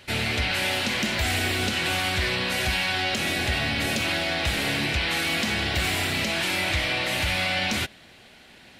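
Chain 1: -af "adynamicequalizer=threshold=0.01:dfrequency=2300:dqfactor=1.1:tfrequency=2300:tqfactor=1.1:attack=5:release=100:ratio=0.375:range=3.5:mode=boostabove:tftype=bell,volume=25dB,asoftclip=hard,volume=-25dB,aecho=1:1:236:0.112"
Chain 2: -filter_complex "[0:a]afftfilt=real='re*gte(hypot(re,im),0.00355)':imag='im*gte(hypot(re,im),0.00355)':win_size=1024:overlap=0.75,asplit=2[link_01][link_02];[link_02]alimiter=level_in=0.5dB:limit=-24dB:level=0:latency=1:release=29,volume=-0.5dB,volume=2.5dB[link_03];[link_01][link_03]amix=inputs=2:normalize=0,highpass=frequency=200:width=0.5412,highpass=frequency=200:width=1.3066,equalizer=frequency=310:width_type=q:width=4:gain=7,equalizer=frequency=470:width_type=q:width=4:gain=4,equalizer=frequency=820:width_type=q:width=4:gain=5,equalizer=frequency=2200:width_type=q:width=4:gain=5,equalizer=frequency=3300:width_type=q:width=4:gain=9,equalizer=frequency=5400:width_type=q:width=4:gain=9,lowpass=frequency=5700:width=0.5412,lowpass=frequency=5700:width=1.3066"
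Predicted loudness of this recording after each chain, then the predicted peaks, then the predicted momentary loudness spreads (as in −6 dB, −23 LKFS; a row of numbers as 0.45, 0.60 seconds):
−24.5, −15.5 LKFS; −24.0, −5.0 dBFS; 1, 1 LU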